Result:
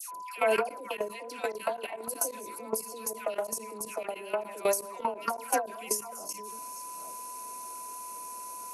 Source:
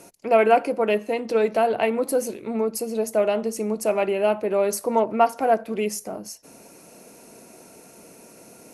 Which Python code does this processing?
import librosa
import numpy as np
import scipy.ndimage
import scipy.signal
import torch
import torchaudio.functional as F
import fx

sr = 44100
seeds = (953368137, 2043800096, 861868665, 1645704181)

p1 = fx.reverse_delay(x, sr, ms=467, wet_db=-13.0)
p2 = fx.rider(p1, sr, range_db=3, speed_s=0.5)
p3 = p1 + (p2 * 10.0 ** (-1.5 / 20.0))
p4 = p3 + 10.0 ** (-28.0 / 20.0) * np.sin(2.0 * np.pi * 1000.0 * np.arange(len(p3)) / sr)
p5 = fx.riaa(p4, sr, side='recording')
p6 = fx.dispersion(p5, sr, late='lows', ms=139.0, hz=1200.0)
p7 = fx.level_steps(p6, sr, step_db=18)
p8 = fx.end_taper(p7, sr, db_per_s=160.0)
y = p8 * 10.0 ** (-5.5 / 20.0)